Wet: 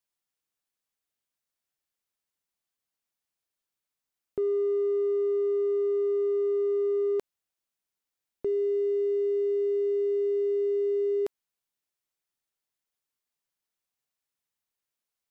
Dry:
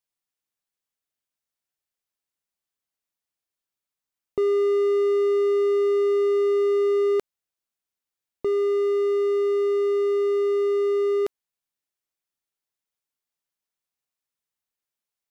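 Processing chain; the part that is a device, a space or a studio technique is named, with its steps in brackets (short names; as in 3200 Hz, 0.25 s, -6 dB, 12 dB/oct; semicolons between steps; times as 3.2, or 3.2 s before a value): soft clipper into limiter (soft clip -20 dBFS, distortion -17 dB; limiter -23 dBFS, peak gain reduction 2.5 dB)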